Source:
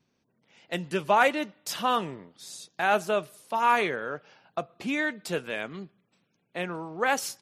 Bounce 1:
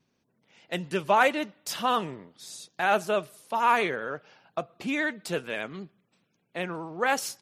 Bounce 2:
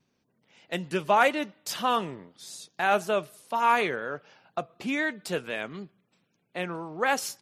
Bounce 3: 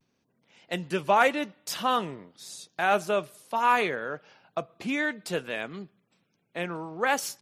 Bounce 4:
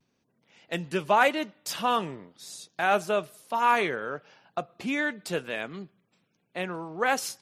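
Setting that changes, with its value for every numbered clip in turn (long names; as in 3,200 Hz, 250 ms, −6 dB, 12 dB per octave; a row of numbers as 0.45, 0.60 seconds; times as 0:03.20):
pitch vibrato, speed: 15, 4, 0.58, 0.94 Hertz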